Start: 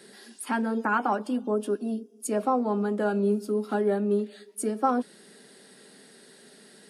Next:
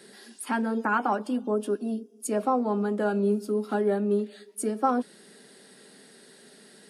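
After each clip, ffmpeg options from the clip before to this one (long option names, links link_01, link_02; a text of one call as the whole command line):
ffmpeg -i in.wav -af anull out.wav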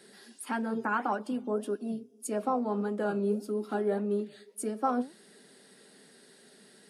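ffmpeg -i in.wav -af "flanger=delay=1.3:depth=6.9:regen=82:speed=1.7:shape=sinusoidal" out.wav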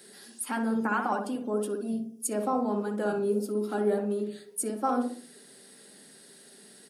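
ffmpeg -i in.wav -filter_complex "[0:a]crystalizer=i=1.5:c=0,asplit=2[link_01][link_02];[link_02]adelay=62,lowpass=frequency=1000:poles=1,volume=-3dB,asplit=2[link_03][link_04];[link_04]adelay=62,lowpass=frequency=1000:poles=1,volume=0.45,asplit=2[link_05][link_06];[link_06]adelay=62,lowpass=frequency=1000:poles=1,volume=0.45,asplit=2[link_07][link_08];[link_08]adelay=62,lowpass=frequency=1000:poles=1,volume=0.45,asplit=2[link_09][link_10];[link_10]adelay=62,lowpass=frequency=1000:poles=1,volume=0.45,asplit=2[link_11][link_12];[link_12]adelay=62,lowpass=frequency=1000:poles=1,volume=0.45[link_13];[link_01][link_03][link_05][link_07][link_09][link_11][link_13]amix=inputs=7:normalize=0" out.wav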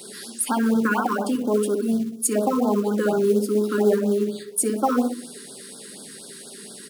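ffmpeg -i in.wav -filter_complex "[0:a]asplit=2[link_01][link_02];[link_02]acompressor=threshold=-36dB:ratio=8,volume=2dB[link_03];[link_01][link_03]amix=inputs=2:normalize=0,acrusher=bits=6:mode=log:mix=0:aa=0.000001,afftfilt=real='re*(1-between(b*sr/1024,630*pow(2300/630,0.5+0.5*sin(2*PI*4.2*pts/sr))/1.41,630*pow(2300/630,0.5+0.5*sin(2*PI*4.2*pts/sr))*1.41))':imag='im*(1-between(b*sr/1024,630*pow(2300/630,0.5+0.5*sin(2*PI*4.2*pts/sr))/1.41,630*pow(2300/630,0.5+0.5*sin(2*PI*4.2*pts/sr))*1.41))':win_size=1024:overlap=0.75,volume=5.5dB" out.wav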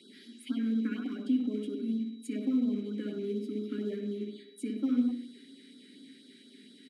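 ffmpeg -i in.wav -filter_complex "[0:a]asplit=3[link_01][link_02][link_03];[link_01]bandpass=frequency=270:width_type=q:width=8,volume=0dB[link_04];[link_02]bandpass=frequency=2290:width_type=q:width=8,volume=-6dB[link_05];[link_03]bandpass=frequency=3010:width_type=q:width=8,volume=-9dB[link_06];[link_04][link_05][link_06]amix=inputs=3:normalize=0,aeval=exprs='val(0)+0.000891*sin(2*PI*3900*n/s)':channel_layout=same,asplit=2[link_07][link_08];[link_08]adelay=100,highpass=300,lowpass=3400,asoftclip=type=hard:threshold=-26dB,volume=-9dB[link_09];[link_07][link_09]amix=inputs=2:normalize=0" out.wav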